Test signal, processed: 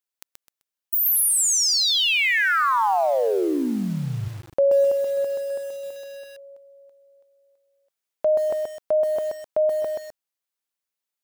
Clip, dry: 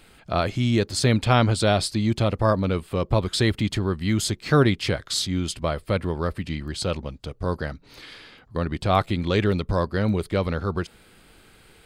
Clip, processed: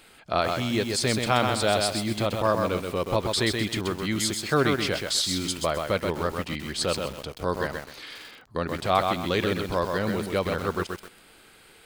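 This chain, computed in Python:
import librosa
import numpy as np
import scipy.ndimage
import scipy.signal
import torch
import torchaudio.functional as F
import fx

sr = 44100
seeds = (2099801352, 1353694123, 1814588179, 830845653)

p1 = fx.high_shelf(x, sr, hz=9800.0, db=2.0)
p2 = fx.rider(p1, sr, range_db=5, speed_s=0.5)
p3 = p1 + F.gain(torch.from_numpy(p2), -3.0).numpy()
p4 = fx.low_shelf(p3, sr, hz=200.0, db=-12.0)
p5 = fx.echo_crushed(p4, sr, ms=129, feedback_pct=35, bits=6, wet_db=-4.0)
y = F.gain(torch.from_numpy(p5), -5.0).numpy()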